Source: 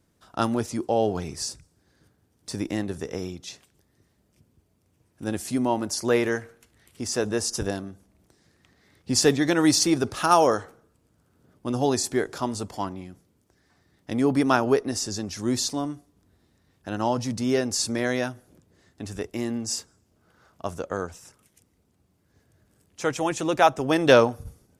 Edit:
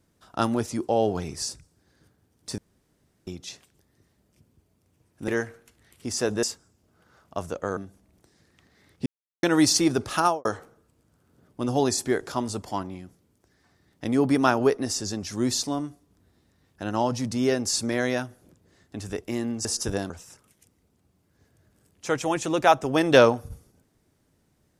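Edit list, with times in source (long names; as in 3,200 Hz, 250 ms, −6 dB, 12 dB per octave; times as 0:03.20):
0:02.58–0:03.27: fill with room tone
0:05.28–0:06.23: remove
0:07.38–0:07.83: swap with 0:19.71–0:21.05
0:09.12–0:09.49: silence
0:10.24–0:10.51: fade out and dull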